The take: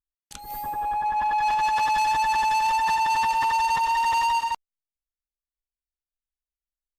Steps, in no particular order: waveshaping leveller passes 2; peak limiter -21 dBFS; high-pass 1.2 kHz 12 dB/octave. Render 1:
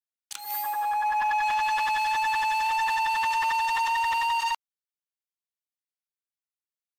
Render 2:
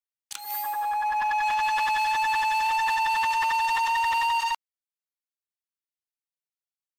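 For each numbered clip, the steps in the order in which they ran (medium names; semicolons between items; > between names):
high-pass > waveshaping leveller > peak limiter; peak limiter > high-pass > waveshaping leveller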